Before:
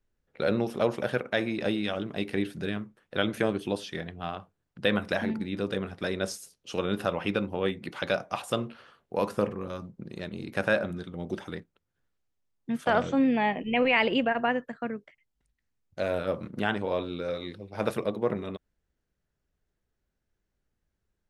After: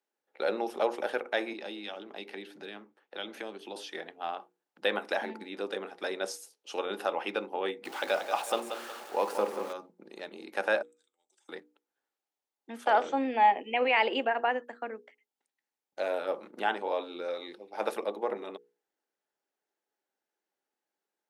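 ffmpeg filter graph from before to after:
-filter_complex "[0:a]asettb=1/sr,asplit=3[s0][s1][s2];[s0]atrim=end=1.534[s3];[s1]atrim=start=1.53:end=3.76,asetpts=PTS-STARTPTS,afade=t=in:d=0.004:c=qsin,afade=t=out:st=2.226:d=0.004:c=qsin,equalizer=f=9500:w=0.95:g=-9.5,acrossover=split=190|3000[s4][s5][s6];[s5]acompressor=threshold=0.0112:ratio=2.5:attack=3.2:release=140:knee=2.83:detection=peak[s7];[s4][s7][s6]amix=inputs=3:normalize=0[s8];[s2]atrim=start=3.756[s9];[s3][s8]acrossfade=d=0.004:c1=hsin:c2=qsin[s10];[s10][s9]acrossfade=d=0.004:c1=qsin:c2=hsin,asettb=1/sr,asplit=3[s11][s12][s13];[s11]atrim=end=7.854[s14];[s12]atrim=start=7.85:end=9.73,asetpts=PTS-STARTPTS,afade=t=in:d=0.004:c=qsin,afade=t=out:st=1.876:d=0.004:c=qsin,aeval=exprs='val(0)+0.5*0.0126*sgn(val(0))':c=same,aecho=1:1:184|368|552|736:0.376|0.135|0.0487|0.0175,atrim=end_sample=82908[s15];[s13]atrim=start=9.726[s16];[s14][s15]acrossfade=d=0.004:c1=hsin:c2=qsin[s17];[s17][s16]acrossfade=d=0.004:c1=qsin:c2=hsin,asettb=1/sr,asplit=3[s18][s19][s20];[s18]atrim=end=10.824[s21];[s19]atrim=start=10.82:end=11.49,asetpts=PTS-STARTPTS,afade=t=in:d=0.004:c=qsin,afade=t=out:st=0.666:d=0.004:c=qsin,acontrast=30,bandpass=f=7700:t=q:w=11[s22];[s20]atrim=start=11.486[s23];[s21][s22]acrossfade=d=0.004:c1=hsin:c2=qsin[s24];[s24][s23]acrossfade=d=0.004:c1=qsin:c2=hsin,highpass=f=310:w=0.5412,highpass=f=310:w=1.3066,equalizer=f=830:t=o:w=0.2:g=10.5,bandreject=f=60:t=h:w=6,bandreject=f=120:t=h:w=6,bandreject=f=180:t=h:w=6,bandreject=f=240:t=h:w=6,bandreject=f=300:t=h:w=6,bandreject=f=360:t=h:w=6,bandreject=f=420:t=h:w=6,bandreject=f=480:t=h:w=6,volume=0.75"

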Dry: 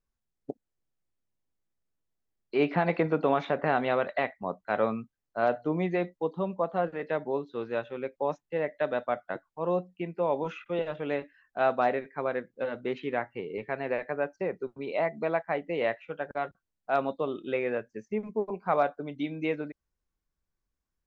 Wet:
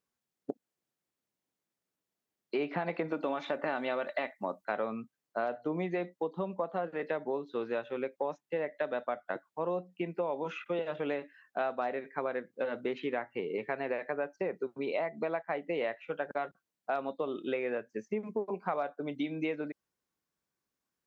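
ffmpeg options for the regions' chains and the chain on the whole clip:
-filter_complex "[0:a]asettb=1/sr,asplit=3[s0][s1][s2];[s0]atrim=end=3.084[s3];[s1]atrim=start=3.08:end=4.65,asetpts=PTS-STARTPTS,afade=t=in:d=0.004:c=qsin,afade=t=out:st=1.566:d=0.004:c=qsin,aemphasis=mode=production:type=cd,aecho=1:1:3.4:0.39,atrim=end_sample=69237[s4];[s2]atrim=start=4.646[s5];[s3][s4]acrossfade=d=0.004:c1=hsin:c2=qsin[s6];[s6][s5]acrossfade=d=0.004:c1=qsin:c2=hsin,highpass=180,acompressor=threshold=0.0224:ratio=6,volume=1.41"

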